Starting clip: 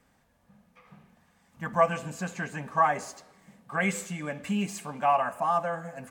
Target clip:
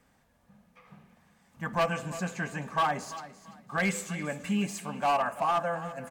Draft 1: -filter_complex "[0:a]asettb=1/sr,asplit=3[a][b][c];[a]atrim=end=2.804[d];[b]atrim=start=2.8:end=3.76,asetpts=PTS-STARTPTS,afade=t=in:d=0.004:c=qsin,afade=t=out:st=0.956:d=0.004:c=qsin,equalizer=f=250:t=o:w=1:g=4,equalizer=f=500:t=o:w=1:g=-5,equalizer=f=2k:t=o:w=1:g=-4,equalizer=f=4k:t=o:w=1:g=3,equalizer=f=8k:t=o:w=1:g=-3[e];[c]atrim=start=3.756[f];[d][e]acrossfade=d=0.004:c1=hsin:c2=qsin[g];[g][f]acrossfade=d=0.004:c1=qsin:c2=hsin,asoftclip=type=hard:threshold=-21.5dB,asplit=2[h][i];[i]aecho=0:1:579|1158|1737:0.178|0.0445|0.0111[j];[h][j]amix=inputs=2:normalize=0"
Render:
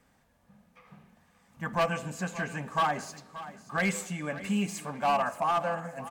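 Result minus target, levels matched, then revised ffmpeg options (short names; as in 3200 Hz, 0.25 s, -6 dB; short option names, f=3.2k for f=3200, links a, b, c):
echo 0.239 s late
-filter_complex "[0:a]asettb=1/sr,asplit=3[a][b][c];[a]atrim=end=2.804[d];[b]atrim=start=2.8:end=3.76,asetpts=PTS-STARTPTS,afade=t=in:d=0.004:c=qsin,afade=t=out:st=0.956:d=0.004:c=qsin,equalizer=f=250:t=o:w=1:g=4,equalizer=f=500:t=o:w=1:g=-5,equalizer=f=2k:t=o:w=1:g=-4,equalizer=f=4k:t=o:w=1:g=3,equalizer=f=8k:t=o:w=1:g=-3[e];[c]atrim=start=3.756[f];[d][e]acrossfade=d=0.004:c1=hsin:c2=qsin[g];[g][f]acrossfade=d=0.004:c1=qsin:c2=hsin,asoftclip=type=hard:threshold=-21.5dB,asplit=2[h][i];[i]aecho=0:1:340|680|1020:0.178|0.0445|0.0111[j];[h][j]amix=inputs=2:normalize=0"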